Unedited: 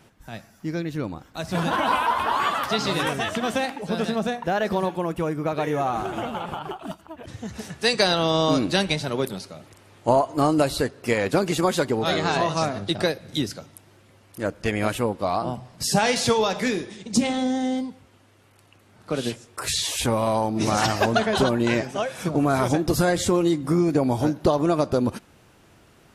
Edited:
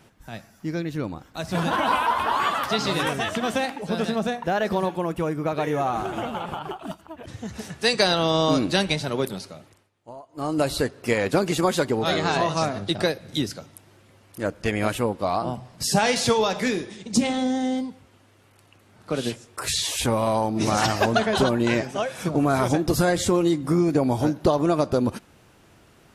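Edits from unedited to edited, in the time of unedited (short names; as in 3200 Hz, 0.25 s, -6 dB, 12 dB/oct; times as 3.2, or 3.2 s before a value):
9.5–10.71 dip -22.5 dB, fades 0.40 s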